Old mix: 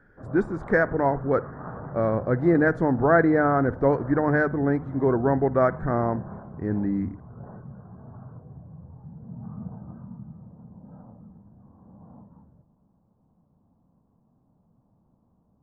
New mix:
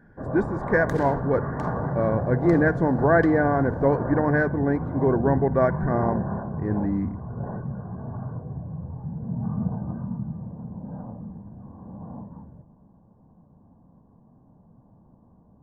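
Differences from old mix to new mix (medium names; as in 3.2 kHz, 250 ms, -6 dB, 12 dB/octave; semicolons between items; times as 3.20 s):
first sound +10.0 dB; second sound: unmuted; master: add Butterworth band-stop 1.3 kHz, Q 7.4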